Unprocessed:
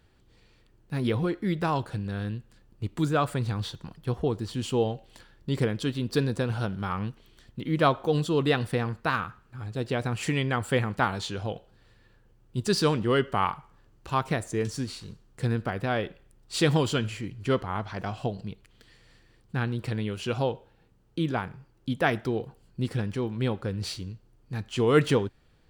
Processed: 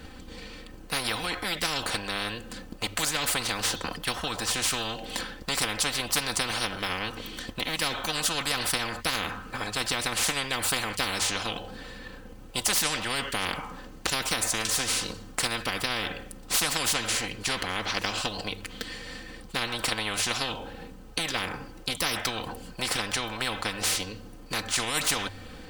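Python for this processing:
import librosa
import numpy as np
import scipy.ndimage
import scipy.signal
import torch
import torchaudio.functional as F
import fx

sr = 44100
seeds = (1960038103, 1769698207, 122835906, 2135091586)

y = fx.transient(x, sr, attack_db=7, sustain_db=3)
y = fx.hum_notches(y, sr, base_hz=50, count=2)
y = y + 0.7 * np.pad(y, (int(3.9 * sr / 1000.0), 0))[:len(y)]
y = fx.spectral_comp(y, sr, ratio=10.0)
y = y * librosa.db_to_amplitude(-3.5)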